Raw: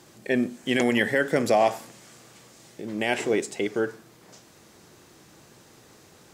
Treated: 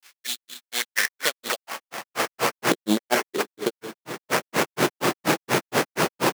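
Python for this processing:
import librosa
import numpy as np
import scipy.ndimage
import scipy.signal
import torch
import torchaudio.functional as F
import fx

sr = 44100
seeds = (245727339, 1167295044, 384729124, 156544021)

p1 = fx.cvsd(x, sr, bps=64000)
p2 = fx.recorder_agc(p1, sr, target_db=-17.5, rise_db_per_s=40.0, max_gain_db=30)
p3 = fx.peak_eq(p2, sr, hz=140.0, db=10.5, octaves=1.4)
p4 = fx.granulator(p3, sr, seeds[0], grain_ms=137.0, per_s=4.2, spray_ms=100.0, spread_st=0)
p5 = 10.0 ** (-20.5 / 20.0) * (np.abs((p4 / 10.0 ** (-20.5 / 20.0) + 3.0) % 4.0 - 2.0) - 1.0)
p6 = p4 + (p5 * librosa.db_to_amplitude(-9.0))
p7 = fx.sample_hold(p6, sr, seeds[1], rate_hz=3800.0, jitter_pct=20)
p8 = fx.filter_sweep_highpass(p7, sr, from_hz=2500.0, to_hz=350.0, start_s=0.28, end_s=2.86, q=0.73)
y = p8 * librosa.db_to_amplitude(8.5)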